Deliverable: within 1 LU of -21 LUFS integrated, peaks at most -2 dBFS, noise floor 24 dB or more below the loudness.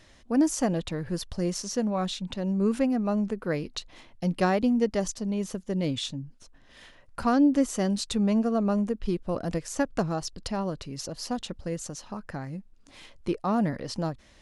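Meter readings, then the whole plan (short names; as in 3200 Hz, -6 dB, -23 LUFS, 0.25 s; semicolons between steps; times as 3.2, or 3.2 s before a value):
loudness -28.5 LUFS; peak -12.5 dBFS; loudness target -21.0 LUFS
-> gain +7.5 dB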